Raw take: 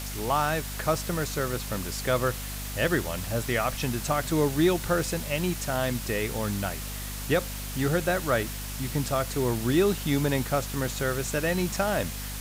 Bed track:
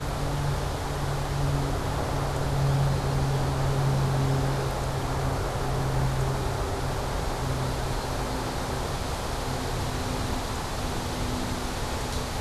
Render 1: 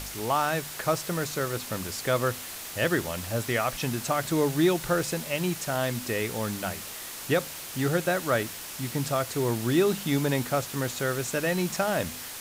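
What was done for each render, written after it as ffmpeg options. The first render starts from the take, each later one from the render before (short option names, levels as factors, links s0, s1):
-af "bandreject=f=50:t=h:w=4,bandreject=f=100:t=h:w=4,bandreject=f=150:t=h:w=4,bandreject=f=200:t=h:w=4,bandreject=f=250:t=h:w=4"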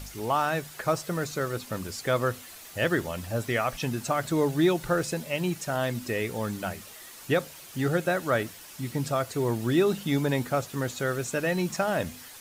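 -af "afftdn=nr=9:nf=-39"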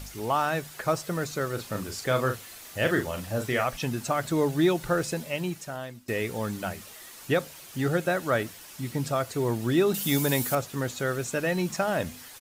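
-filter_complex "[0:a]asplit=3[s0][s1][s2];[s0]afade=t=out:st=1.57:d=0.02[s3];[s1]asplit=2[s4][s5];[s5]adelay=38,volume=0.447[s6];[s4][s6]amix=inputs=2:normalize=0,afade=t=in:st=1.57:d=0.02,afade=t=out:st=3.64:d=0.02[s7];[s2]afade=t=in:st=3.64:d=0.02[s8];[s3][s7][s8]amix=inputs=3:normalize=0,asettb=1/sr,asplit=3[s9][s10][s11];[s9]atrim=end=9.944[s12];[s10]atrim=start=9.94:end=10.55,asetpts=PTS-STARTPTS,afade=t=in:d=0.004:c=qsin,afade=t=out:st=0.606:d=0.004:c=qsin,aemphasis=mode=production:type=75kf[s13];[s11]atrim=start=10.546[s14];[s12][s13]acrossfade=d=0.004:c1=hsin:c2=qsin[s15];[s15][s14]acrossfade=d=0.004:c1=qsin:c2=hsin,asplit=2[s16][s17];[s16]atrim=end=6.08,asetpts=PTS-STARTPTS,afade=t=out:st=5.22:d=0.86:silence=0.0794328[s18];[s17]atrim=start=6.08,asetpts=PTS-STARTPTS,afade=t=in:d=0.004:c=hsin:silence=0.0794328[s19];[s18][s19]concat=n=2:v=0:a=1"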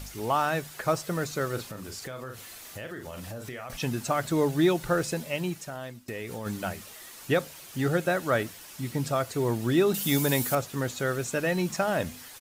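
-filter_complex "[0:a]asettb=1/sr,asplit=3[s0][s1][s2];[s0]atrim=end=1.704[s3];[s1]atrim=start=1.7:end=3.7,asetpts=PTS-STARTPTS,afade=t=in:d=0.004:c=qsin,afade=t=out:st=1.996:d=0.004:c=qsin,acompressor=threshold=0.0178:ratio=8:attack=3.2:release=140:knee=1:detection=peak[s4];[s2]atrim=start=3.696[s5];[s3][s4]acrossfade=d=0.004:c1=hsin:c2=qsin[s6];[s6][s5]acrossfade=d=0.004:c1=qsin:c2=hsin,asplit=3[s7][s8][s9];[s7]afade=t=out:st=5.56:d=0.02[s10];[s8]acompressor=threshold=0.0251:ratio=5:attack=3.2:release=140:knee=1:detection=peak,afade=t=in:st=5.56:d=0.02,afade=t=out:st=6.45:d=0.02[s11];[s9]afade=t=in:st=6.45:d=0.02[s12];[s10][s11][s12]amix=inputs=3:normalize=0"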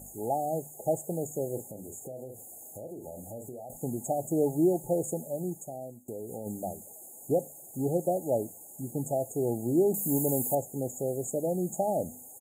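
-af "highpass=f=220:p=1,afftfilt=real='re*(1-between(b*sr/4096,870,6500))':imag='im*(1-between(b*sr/4096,870,6500))':win_size=4096:overlap=0.75"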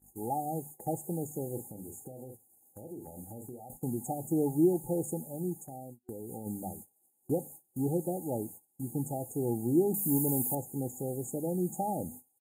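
-af "agate=range=0.0501:threshold=0.00631:ratio=16:detection=peak,superequalizer=7b=0.562:8b=0.282:11b=2:14b=0.631:15b=0.447"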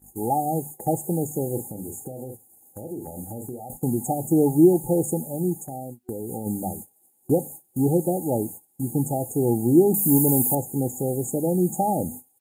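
-af "volume=3.16"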